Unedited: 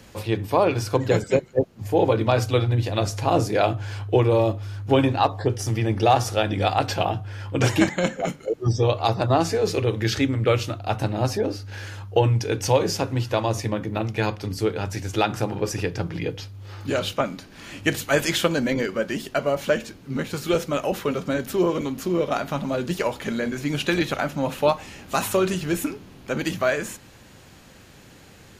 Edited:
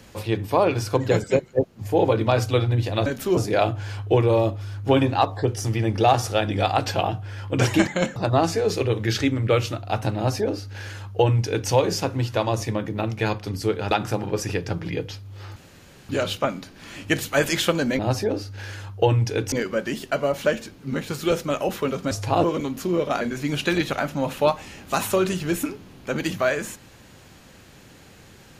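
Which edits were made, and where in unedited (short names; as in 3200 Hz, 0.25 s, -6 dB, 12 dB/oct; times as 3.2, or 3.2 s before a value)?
3.06–3.39 swap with 21.34–21.65
8.18–9.13 cut
11.13–12.66 copy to 18.75
14.88–15.2 cut
16.85 insert room tone 0.53 s
22.42–23.42 cut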